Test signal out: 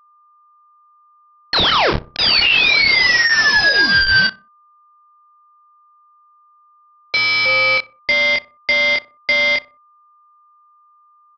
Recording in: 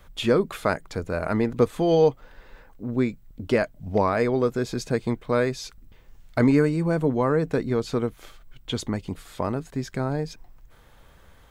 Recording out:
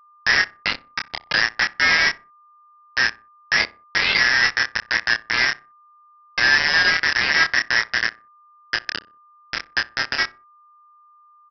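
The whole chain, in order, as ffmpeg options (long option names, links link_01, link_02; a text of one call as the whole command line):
ffmpeg -i in.wav -filter_complex "[0:a]afftfilt=real='real(if(lt(b,272),68*(eq(floor(b/68),0)*2+eq(floor(b/68),1)*0+eq(floor(b/68),2)*3+eq(floor(b/68),3)*1)+mod(b,68),b),0)':imag='imag(if(lt(b,272),68*(eq(floor(b/68),0)*2+eq(floor(b/68),1)*0+eq(floor(b/68),2)*3+eq(floor(b/68),3)*1)+mod(b,68),b),0)':win_size=2048:overlap=0.75,bandreject=frequency=60:width_type=h:width=6,bandreject=frequency=120:width_type=h:width=6,bandreject=frequency=180:width_type=h:width=6,bandreject=frequency=240:width_type=h:width=6,bandreject=frequency=300:width_type=h:width=6,afftfilt=real='re*gte(hypot(re,im),0.282)':imag='im*gte(hypot(re,im),0.282)':win_size=1024:overlap=0.75,afftdn=noise_reduction=13:noise_floor=-35,alimiter=limit=-19.5dB:level=0:latency=1:release=35,aresample=11025,acrusher=bits=3:mix=0:aa=0.000001,aresample=44100,asplit=2[link_01][link_02];[link_02]adelay=27,volume=-4.5dB[link_03];[link_01][link_03]amix=inputs=2:normalize=0,aeval=exprs='val(0)+0.00158*sin(2*PI*1200*n/s)':channel_layout=same,asplit=2[link_04][link_05];[link_05]adelay=62,lowpass=frequency=1200:poles=1,volume=-18dB,asplit=2[link_06][link_07];[link_07]adelay=62,lowpass=frequency=1200:poles=1,volume=0.38,asplit=2[link_08][link_09];[link_09]adelay=62,lowpass=frequency=1200:poles=1,volume=0.38[link_10];[link_04][link_06][link_08][link_10]amix=inputs=4:normalize=0,volume=6.5dB" out.wav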